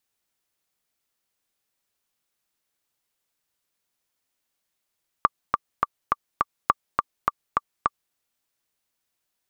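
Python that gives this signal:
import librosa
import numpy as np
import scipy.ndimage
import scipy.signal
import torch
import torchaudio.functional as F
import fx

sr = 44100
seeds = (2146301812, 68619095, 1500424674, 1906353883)

y = fx.click_track(sr, bpm=207, beats=5, bars=2, hz=1170.0, accent_db=3.5, level_db=-3.0)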